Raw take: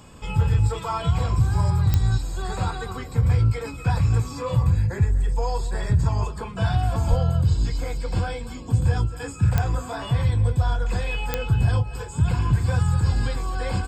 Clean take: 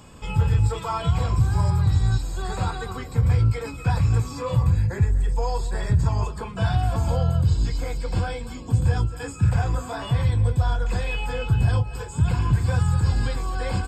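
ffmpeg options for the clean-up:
ffmpeg -i in.wav -filter_complex "[0:a]adeclick=threshold=4,asplit=3[link_01][link_02][link_03];[link_01]afade=type=out:start_time=7.09:duration=0.02[link_04];[link_02]highpass=frequency=140:width=0.5412,highpass=frequency=140:width=1.3066,afade=type=in:start_time=7.09:duration=0.02,afade=type=out:start_time=7.21:duration=0.02[link_05];[link_03]afade=type=in:start_time=7.21:duration=0.02[link_06];[link_04][link_05][link_06]amix=inputs=3:normalize=0" out.wav

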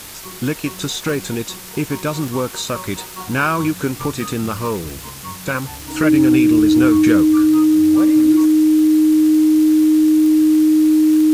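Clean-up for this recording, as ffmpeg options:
ffmpeg -i in.wav -af "adeclick=threshold=4,bandreject=frequency=50:width_type=h:width=4,bandreject=frequency=100:width_type=h:width=4,bandreject=frequency=150:width_type=h:width=4,bandreject=frequency=200:width_type=h:width=4,bandreject=frequency=310:width=30,afftdn=noise_reduction=28:noise_floor=-34" out.wav

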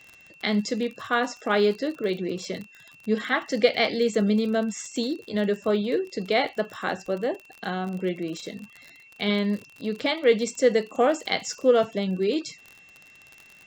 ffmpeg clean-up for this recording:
ffmpeg -i in.wav -af "adeclick=threshold=4,bandreject=frequency=2700:width=30,agate=range=-21dB:threshold=-44dB" out.wav

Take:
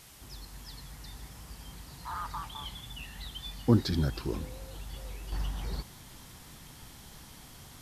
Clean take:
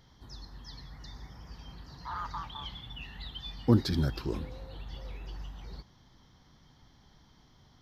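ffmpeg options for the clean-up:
ffmpeg -i in.wav -af "afwtdn=0.0022,asetnsamples=nb_out_samples=441:pad=0,asendcmd='5.32 volume volume -8.5dB',volume=0dB" out.wav

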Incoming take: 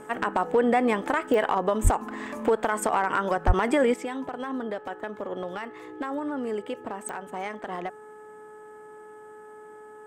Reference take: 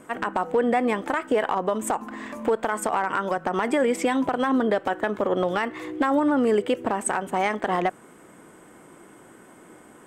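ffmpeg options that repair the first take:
ffmpeg -i in.wav -filter_complex "[0:a]adeclick=threshold=4,bandreject=frequency=426.6:width_type=h:width=4,bandreject=frequency=853.2:width_type=h:width=4,bandreject=frequency=1279.8:width_type=h:width=4,bandreject=frequency=1706.4:width_type=h:width=4,asplit=3[link_01][link_02][link_03];[link_01]afade=type=out:start_time=1.83:duration=0.02[link_04];[link_02]highpass=frequency=140:width=0.5412,highpass=frequency=140:width=1.3066,afade=type=in:start_time=1.83:duration=0.02,afade=type=out:start_time=1.95:duration=0.02[link_05];[link_03]afade=type=in:start_time=1.95:duration=0.02[link_06];[link_04][link_05][link_06]amix=inputs=3:normalize=0,asplit=3[link_07][link_08][link_09];[link_07]afade=type=out:start_time=3.46:duration=0.02[link_10];[link_08]highpass=frequency=140:width=0.5412,highpass=frequency=140:width=1.3066,afade=type=in:start_time=3.46:duration=0.02,afade=type=out:start_time=3.58:duration=0.02[link_11];[link_09]afade=type=in:start_time=3.58:duration=0.02[link_12];[link_10][link_11][link_12]amix=inputs=3:normalize=0,asetnsamples=nb_out_samples=441:pad=0,asendcmd='3.94 volume volume 10dB',volume=0dB" out.wav

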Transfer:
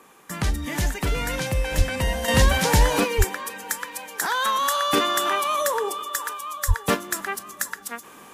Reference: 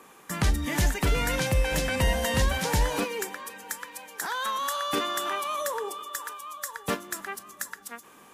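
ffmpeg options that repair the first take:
ffmpeg -i in.wav -filter_complex "[0:a]asplit=3[link_01][link_02][link_03];[link_01]afade=type=out:start_time=1.77:duration=0.02[link_04];[link_02]highpass=frequency=140:width=0.5412,highpass=frequency=140:width=1.3066,afade=type=in:start_time=1.77:duration=0.02,afade=type=out:start_time=1.89:duration=0.02[link_05];[link_03]afade=type=in:start_time=1.89:duration=0.02[link_06];[link_04][link_05][link_06]amix=inputs=3:normalize=0,asplit=3[link_07][link_08][link_09];[link_07]afade=type=out:start_time=3.17:duration=0.02[link_10];[link_08]highpass=frequency=140:width=0.5412,highpass=frequency=140:width=1.3066,afade=type=in:start_time=3.17:duration=0.02,afade=type=out:start_time=3.29:duration=0.02[link_11];[link_09]afade=type=in:start_time=3.29:duration=0.02[link_12];[link_10][link_11][link_12]amix=inputs=3:normalize=0,asplit=3[link_13][link_14][link_15];[link_13]afade=type=out:start_time=6.67:duration=0.02[link_16];[link_14]highpass=frequency=140:width=0.5412,highpass=frequency=140:width=1.3066,afade=type=in:start_time=6.67:duration=0.02,afade=type=out:start_time=6.79:duration=0.02[link_17];[link_15]afade=type=in:start_time=6.79:duration=0.02[link_18];[link_16][link_17][link_18]amix=inputs=3:normalize=0,asetnsamples=nb_out_samples=441:pad=0,asendcmd='2.28 volume volume -7dB',volume=0dB" out.wav

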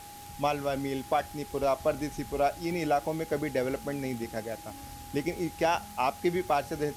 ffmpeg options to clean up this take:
ffmpeg -i in.wav -af "adeclick=threshold=4,bandreject=frequency=98.8:width_type=h:width=4,bandreject=frequency=197.6:width_type=h:width=4,bandreject=frequency=296.4:width_type=h:width=4,bandreject=frequency=395.2:width_type=h:width=4,bandreject=frequency=820:width=30,afwtdn=0.0035" out.wav

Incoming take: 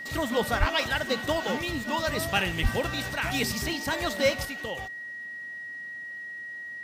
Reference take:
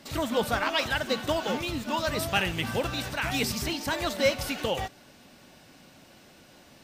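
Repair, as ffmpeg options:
ffmpeg -i in.wav -filter_complex "[0:a]bandreject=frequency=1900:width=30,asplit=3[link_01][link_02][link_03];[link_01]afade=type=out:start_time=0.59:duration=0.02[link_04];[link_02]highpass=frequency=140:width=0.5412,highpass=frequency=140:width=1.3066,afade=type=in:start_time=0.59:duration=0.02,afade=type=out:start_time=0.71:duration=0.02[link_05];[link_03]afade=type=in:start_time=0.71:duration=0.02[link_06];[link_04][link_05][link_06]amix=inputs=3:normalize=0,asplit=3[link_07][link_08][link_09];[link_07]afade=type=out:start_time=2.62:duration=0.02[link_10];[link_08]highpass=frequency=140:width=0.5412,highpass=frequency=140:width=1.3066,afade=type=in:start_time=2.62:duration=0.02,afade=type=out:start_time=2.74:duration=0.02[link_11];[link_09]afade=type=in:start_time=2.74:duration=0.02[link_12];[link_10][link_11][link_12]amix=inputs=3:normalize=0,asetnsamples=nb_out_samples=441:pad=0,asendcmd='4.45 volume volume 7dB',volume=0dB" out.wav

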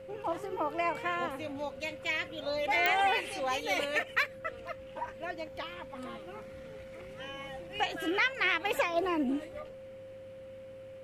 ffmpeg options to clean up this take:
ffmpeg -i in.wav -af "adeclick=threshold=4,bandreject=frequency=102.3:width_type=h:width=4,bandreject=frequency=204.6:width_type=h:width=4,bandreject=frequency=306.9:width_type=h:width=4,bandreject=frequency=409.2:width_type=h:width=4,bandreject=frequency=511.5:width_type=h:width=4,bandreject=frequency=530:width=30" out.wav

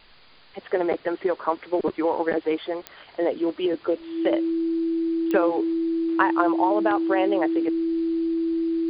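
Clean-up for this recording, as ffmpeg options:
ffmpeg -i in.wav -af "adeclick=threshold=4,bandreject=frequency=330:width=30,afwtdn=0.0035" out.wav

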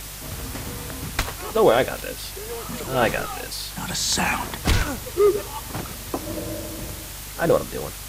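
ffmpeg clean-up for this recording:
ffmpeg -i in.wav -af "adeclick=threshold=4,bandreject=frequency=49.4:width_type=h:width=4,bandreject=frequency=98.8:width_type=h:width=4,bandreject=frequency=148.2:width_type=h:width=4,afwtdn=0.016" out.wav

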